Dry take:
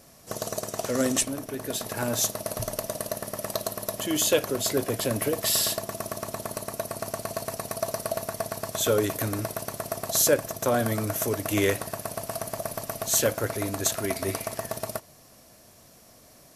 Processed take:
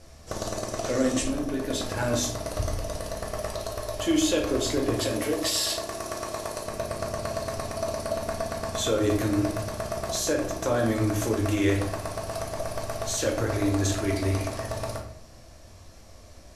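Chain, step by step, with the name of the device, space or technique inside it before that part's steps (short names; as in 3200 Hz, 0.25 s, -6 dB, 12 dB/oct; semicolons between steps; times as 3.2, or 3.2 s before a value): dynamic EQ 300 Hz, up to +6 dB, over -43 dBFS, Q 3.6; car stereo with a boomy subwoofer (resonant low shelf 100 Hz +12 dB, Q 1.5; limiter -17.5 dBFS, peak gain reduction 10 dB); LPF 7200 Hz 12 dB/oct; 4.95–6.66 tone controls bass -10 dB, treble +3 dB; shoebox room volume 96 m³, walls mixed, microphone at 0.71 m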